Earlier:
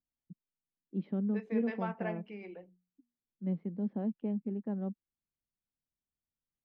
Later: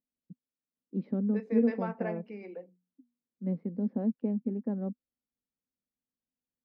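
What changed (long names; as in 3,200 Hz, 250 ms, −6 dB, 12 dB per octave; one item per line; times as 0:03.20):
second voice: add high-pass filter 150 Hz 12 dB per octave
master: add thirty-one-band graphic EQ 250 Hz +10 dB, 500 Hz +9 dB, 3,150 Hz −10 dB, 5,000 Hz +5 dB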